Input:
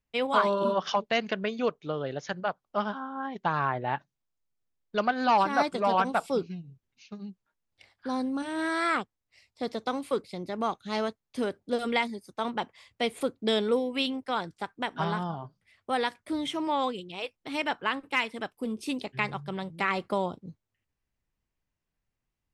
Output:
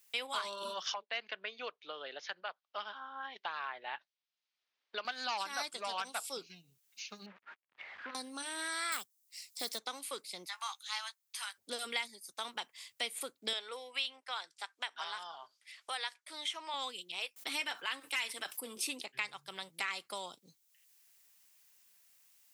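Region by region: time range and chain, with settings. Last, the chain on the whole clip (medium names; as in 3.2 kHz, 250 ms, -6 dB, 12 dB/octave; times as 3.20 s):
0.94–5.05 s: band-pass 350–6400 Hz + distance through air 280 m
7.26–8.15 s: one-bit delta coder 64 kbps, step -48.5 dBFS + low-pass 2.1 kHz 24 dB/octave + transformer saturation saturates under 800 Hz
8.92–9.79 s: block-companded coder 7-bit + tone controls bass +4 dB, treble +11 dB
10.45–11.58 s: steep high-pass 840 Hz 48 dB/octave + doubling 14 ms -7 dB
13.53–16.74 s: high-pass 600 Hz + distance through air 58 m
17.36–19.01 s: comb of notches 210 Hz + level flattener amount 50%
whole clip: differentiator; three bands compressed up and down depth 70%; trim +5 dB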